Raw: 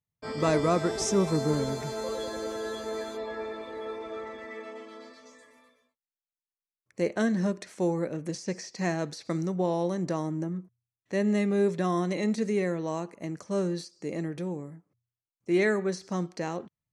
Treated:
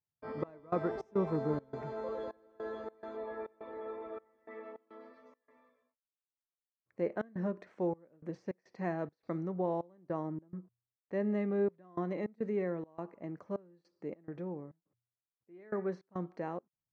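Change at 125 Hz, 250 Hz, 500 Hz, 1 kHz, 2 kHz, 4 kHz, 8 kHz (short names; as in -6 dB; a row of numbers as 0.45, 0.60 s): -9.5 dB, -9.0 dB, -7.5 dB, -8.0 dB, -13.0 dB, under -20 dB, under -35 dB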